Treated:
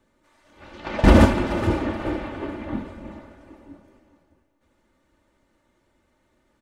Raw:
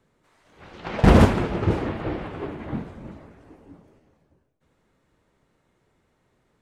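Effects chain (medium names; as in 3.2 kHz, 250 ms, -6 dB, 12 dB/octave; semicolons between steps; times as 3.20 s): comb 3.4 ms, depth 61%; thinning echo 427 ms, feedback 30%, high-pass 420 Hz, level -12.5 dB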